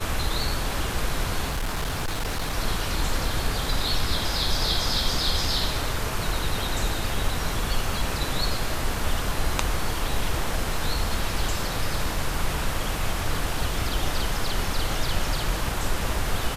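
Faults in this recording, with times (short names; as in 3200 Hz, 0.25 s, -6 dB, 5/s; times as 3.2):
1.46–2.54 clipped -23 dBFS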